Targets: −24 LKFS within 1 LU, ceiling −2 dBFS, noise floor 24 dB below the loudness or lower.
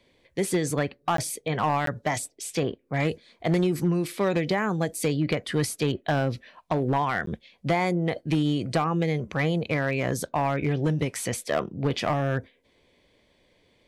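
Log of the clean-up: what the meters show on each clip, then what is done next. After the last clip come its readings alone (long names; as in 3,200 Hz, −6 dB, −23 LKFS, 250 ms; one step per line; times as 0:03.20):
share of clipped samples 0.8%; peaks flattened at −17.0 dBFS; number of dropouts 3; longest dropout 13 ms; integrated loudness −27.0 LKFS; sample peak −17.0 dBFS; target loudness −24.0 LKFS
→ clipped peaks rebuilt −17 dBFS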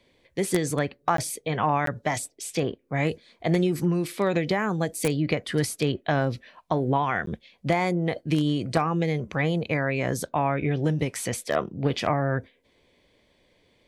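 share of clipped samples 0.0%; number of dropouts 3; longest dropout 13 ms
→ repair the gap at 0:01.17/0:01.86/0:07.26, 13 ms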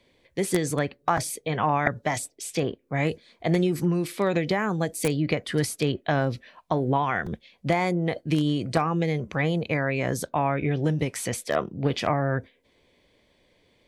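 number of dropouts 0; integrated loudness −26.5 LKFS; sample peak −5.5 dBFS; target loudness −24.0 LKFS
→ level +2.5 dB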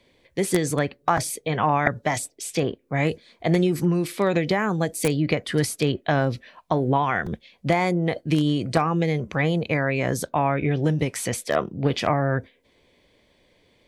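integrated loudness −24.0 LKFS; sample peak −3.0 dBFS; background noise floor −64 dBFS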